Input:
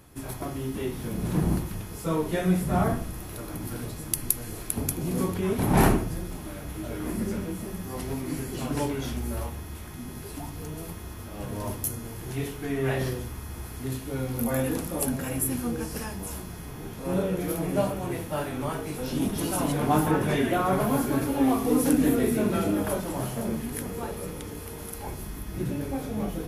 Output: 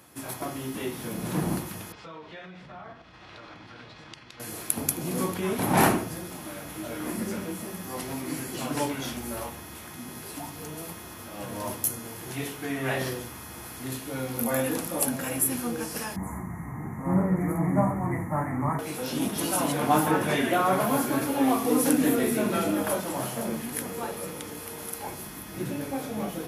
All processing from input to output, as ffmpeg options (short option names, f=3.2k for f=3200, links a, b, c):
-filter_complex "[0:a]asettb=1/sr,asplit=3[a][b][c];[a]atrim=end=1.924[d];[b]atrim=start=1.92:end=4.4,asetpts=PTS-STARTPTS,afade=t=in:d=0.004:c=qsin,afade=t=out:st=2.476:d=0.004:c=qsin,lowpass=f=4.2k:w=0.5412,lowpass=f=4.2k:w=1.3066,equalizer=f=260:t=o:w=2.8:g=-9.5,acompressor=threshold=-39dB:ratio=12:attack=3.2:release=140:knee=1:detection=peak[e];[c]atrim=start=4.396[f];[d][e]acrossfade=d=0.004:c1=hsin:c2=qsin[g];[g][f]acrossfade=d=0.004:c1=qsin:c2=hsin,asettb=1/sr,asplit=3[h][i][j];[h]atrim=end=16.164[k];[i]atrim=start=16.16:end=18.79,asetpts=PTS-STARTPTS,afade=t=in:d=0.004:c=qsin,afade=t=out:st=2.626:d=0.004:c=qsin,asuperstop=centerf=3800:order=12:qfactor=0.91,bass=f=250:g=8,treble=f=4k:g=-14,aecho=1:1:1:0.57,atrim=end_sample=115983[l];[j]atrim=start=18.786[m];[k][l]acrossfade=d=0.004:c1=hsin:c2=qsin[n];[n][m]acrossfade=d=0.004:c1=qsin:c2=hsin,highpass=120,lowshelf=f=330:g=-7.5,bandreject=f=410:w=12,volume=3.5dB"